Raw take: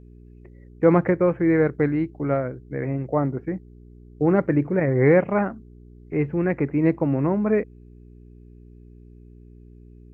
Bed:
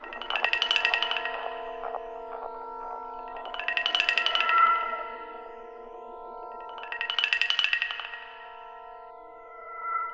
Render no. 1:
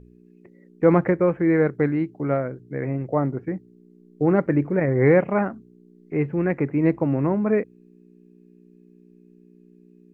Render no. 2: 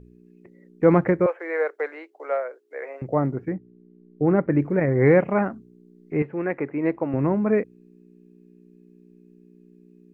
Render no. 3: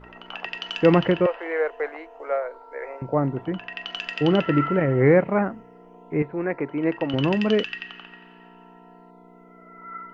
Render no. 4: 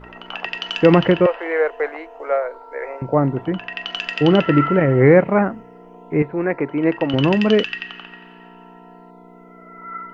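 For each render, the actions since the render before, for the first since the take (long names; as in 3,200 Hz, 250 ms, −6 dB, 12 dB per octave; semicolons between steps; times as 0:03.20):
hum removal 60 Hz, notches 2
0:01.26–0:03.02: Butterworth high-pass 470 Hz; 0:03.53–0:04.55: high-frequency loss of the air 320 metres; 0:06.22–0:07.14: bass and treble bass −13 dB, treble −9 dB
mix in bed −7.5 dB
level +5.5 dB; brickwall limiter −1 dBFS, peak gain reduction 2.5 dB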